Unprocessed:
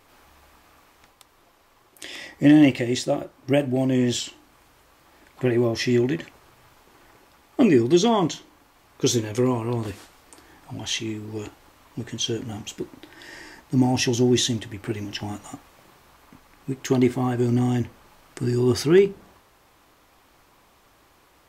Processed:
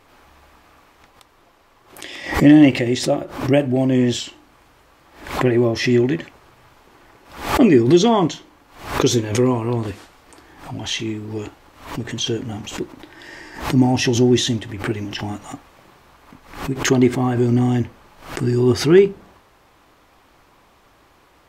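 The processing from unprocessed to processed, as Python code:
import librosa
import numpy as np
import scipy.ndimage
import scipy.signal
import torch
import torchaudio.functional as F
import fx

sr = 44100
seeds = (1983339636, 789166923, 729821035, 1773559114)

y = fx.high_shelf(x, sr, hz=5700.0, db=-8.0)
y = fx.pre_swell(y, sr, db_per_s=110.0)
y = y * librosa.db_to_amplitude(4.5)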